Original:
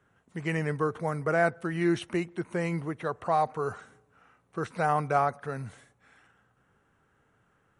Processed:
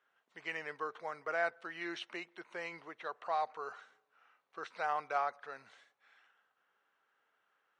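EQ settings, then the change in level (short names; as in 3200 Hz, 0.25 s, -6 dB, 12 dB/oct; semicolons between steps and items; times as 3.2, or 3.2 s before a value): HPF 630 Hz 12 dB/oct; ladder low-pass 5400 Hz, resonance 25%; high shelf 4200 Hz +6.5 dB; -1.5 dB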